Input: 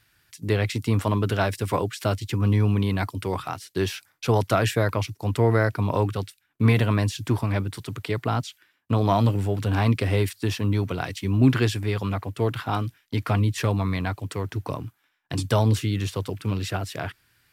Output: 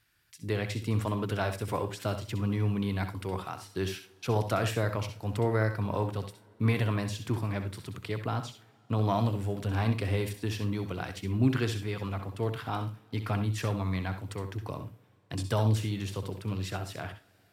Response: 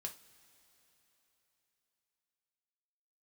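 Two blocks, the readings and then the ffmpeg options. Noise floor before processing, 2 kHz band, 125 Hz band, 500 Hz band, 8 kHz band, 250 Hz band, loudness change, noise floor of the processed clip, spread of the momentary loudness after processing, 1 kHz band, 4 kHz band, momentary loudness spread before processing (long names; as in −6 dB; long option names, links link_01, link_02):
−69 dBFS, −7.0 dB, −7.0 dB, −7.0 dB, −7.0 dB, −7.0 dB, −7.0 dB, −63 dBFS, 10 LU, −7.0 dB, −7.0 dB, 10 LU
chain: -filter_complex "[0:a]asplit=2[link_01][link_02];[1:a]atrim=start_sample=2205,adelay=64[link_03];[link_02][link_03]afir=irnorm=-1:irlink=0,volume=-5.5dB[link_04];[link_01][link_04]amix=inputs=2:normalize=0,volume=-7.5dB"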